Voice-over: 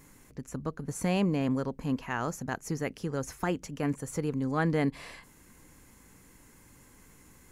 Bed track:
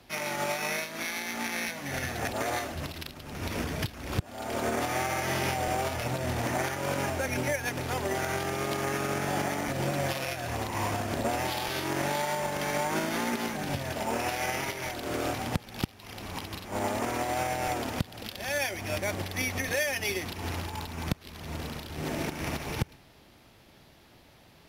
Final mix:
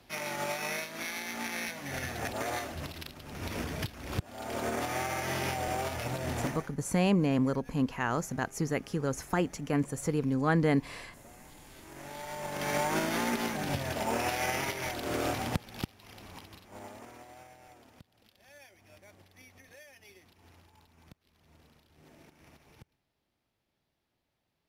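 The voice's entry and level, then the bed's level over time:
5.90 s, +1.5 dB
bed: 6.46 s -3.5 dB
6.74 s -26 dB
11.61 s -26 dB
12.73 s -0.5 dB
15.44 s -0.5 dB
17.64 s -25 dB

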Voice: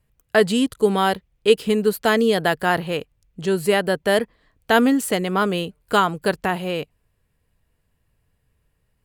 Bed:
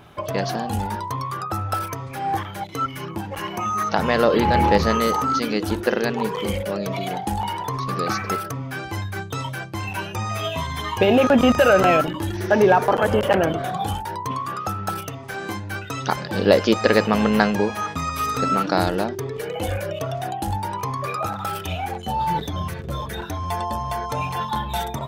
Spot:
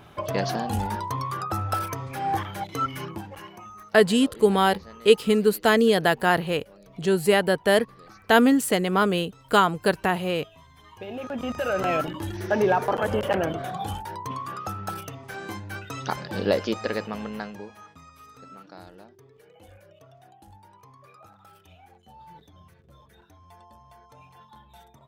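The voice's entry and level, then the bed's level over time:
3.60 s, -1.0 dB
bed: 3.01 s -2 dB
3.93 s -25.5 dB
10.74 s -25.5 dB
12.05 s -6 dB
16.4 s -6 dB
18.22 s -25.5 dB

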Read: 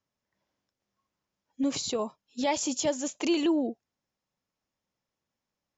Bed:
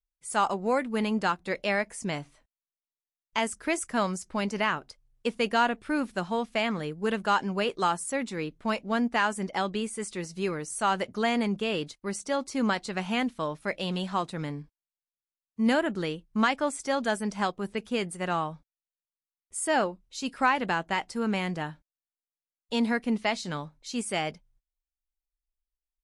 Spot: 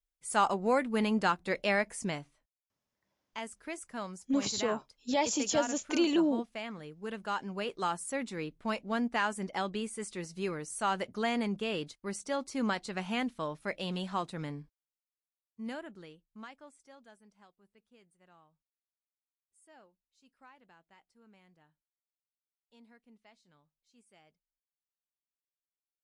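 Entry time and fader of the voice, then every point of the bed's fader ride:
2.70 s, -1.5 dB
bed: 2.04 s -1.5 dB
2.39 s -12.5 dB
6.9 s -12.5 dB
8.13 s -5 dB
14.56 s -5 dB
17.5 s -33.5 dB

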